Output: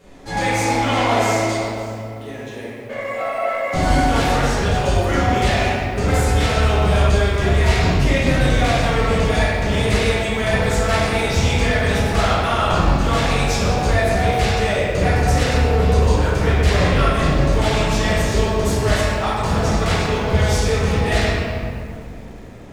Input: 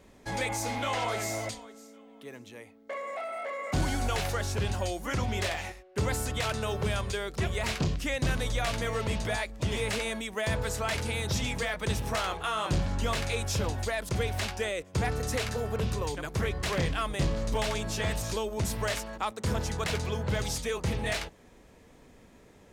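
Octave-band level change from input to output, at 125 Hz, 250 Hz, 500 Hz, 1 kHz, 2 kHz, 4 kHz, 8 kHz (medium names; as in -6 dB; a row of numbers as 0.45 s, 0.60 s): +14.0 dB, +14.5 dB, +13.5 dB, +14.5 dB, +12.5 dB, +10.5 dB, +8.0 dB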